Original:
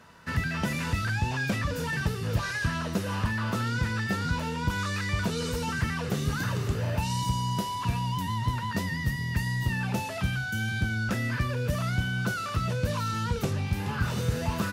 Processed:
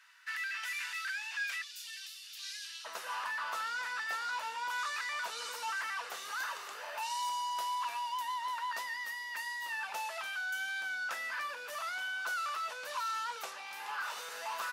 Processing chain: ladder high-pass 1400 Hz, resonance 30%, from 1.61 s 2700 Hz, from 2.84 s 710 Hz; gain +2 dB

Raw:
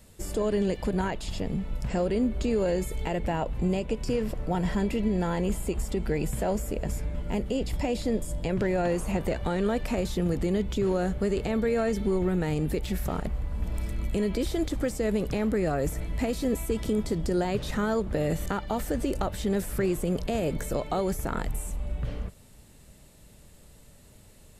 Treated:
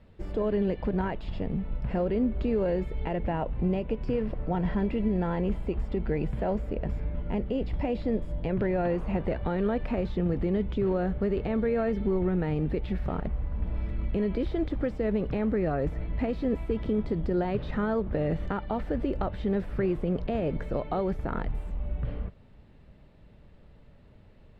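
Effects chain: median filter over 3 samples; air absorption 380 m

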